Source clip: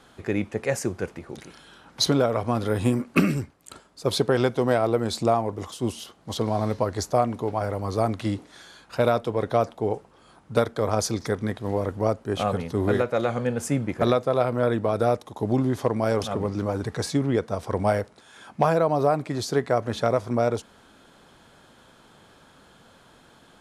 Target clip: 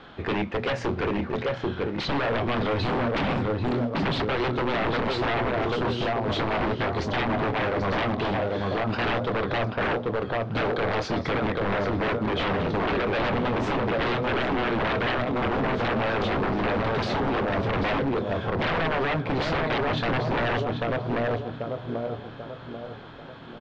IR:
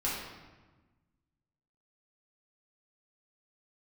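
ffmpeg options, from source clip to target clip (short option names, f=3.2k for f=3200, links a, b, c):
-filter_complex "[0:a]bandreject=f=60:t=h:w=6,bandreject=f=120:t=h:w=6,bandreject=f=180:t=h:w=6,bandreject=f=240:t=h:w=6,acompressor=threshold=-25dB:ratio=3,asplit=2[a][b];[b]adelay=25,volume=-8dB[c];[a][c]amix=inputs=2:normalize=0,asplit=2[d][e];[e]adelay=789,lowpass=f=1.6k:p=1,volume=-3dB,asplit=2[f][g];[g]adelay=789,lowpass=f=1.6k:p=1,volume=0.44,asplit=2[h][i];[i]adelay=789,lowpass=f=1.6k:p=1,volume=0.44,asplit=2[j][k];[k]adelay=789,lowpass=f=1.6k:p=1,volume=0.44,asplit=2[l][m];[m]adelay=789,lowpass=f=1.6k:p=1,volume=0.44,asplit=2[n][o];[o]adelay=789,lowpass=f=1.6k:p=1,volume=0.44[p];[d][f][h][j][l][n][p]amix=inputs=7:normalize=0,asplit=2[q][r];[1:a]atrim=start_sample=2205,atrim=end_sample=3528[s];[r][s]afir=irnorm=-1:irlink=0,volume=-25dB[t];[q][t]amix=inputs=2:normalize=0,acrusher=bits=6:mode=log:mix=0:aa=0.000001,aeval=exprs='0.0447*(abs(mod(val(0)/0.0447+3,4)-2)-1)':c=same,lowpass=f=3.8k:w=0.5412,lowpass=f=3.8k:w=1.3066,volume=7dB"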